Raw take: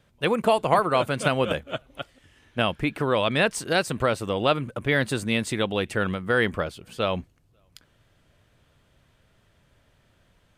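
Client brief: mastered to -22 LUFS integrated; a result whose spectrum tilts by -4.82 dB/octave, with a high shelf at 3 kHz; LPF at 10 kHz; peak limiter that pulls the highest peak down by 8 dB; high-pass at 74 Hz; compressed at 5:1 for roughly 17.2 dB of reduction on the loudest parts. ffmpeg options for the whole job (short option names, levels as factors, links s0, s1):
-af "highpass=74,lowpass=10000,highshelf=f=3000:g=-8,acompressor=threshold=0.0158:ratio=5,volume=10.6,alimiter=limit=0.316:level=0:latency=1"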